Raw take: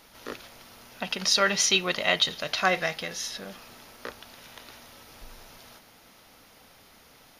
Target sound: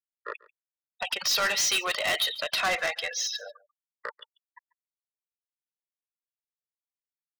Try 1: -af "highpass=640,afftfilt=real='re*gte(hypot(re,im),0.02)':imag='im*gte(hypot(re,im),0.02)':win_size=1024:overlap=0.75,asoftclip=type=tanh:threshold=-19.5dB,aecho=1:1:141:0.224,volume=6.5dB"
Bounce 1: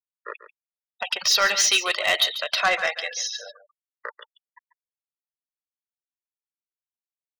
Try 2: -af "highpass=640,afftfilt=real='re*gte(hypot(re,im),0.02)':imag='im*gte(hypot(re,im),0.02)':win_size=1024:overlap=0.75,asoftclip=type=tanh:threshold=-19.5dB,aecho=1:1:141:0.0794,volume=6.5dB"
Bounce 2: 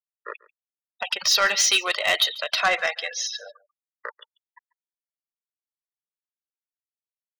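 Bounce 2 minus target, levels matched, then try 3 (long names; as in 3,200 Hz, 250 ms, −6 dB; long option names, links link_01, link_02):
soft clipping: distortion −7 dB
-af "highpass=640,afftfilt=real='re*gte(hypot(re,im),0.02)':imag='im*gte(hypot(re,im),0.02)':win_size=1024:overlap=0.75,asoftclip=type=tanh:threshold=-29dB,aecho=1:1:141:0.0794,volume=6.5dB"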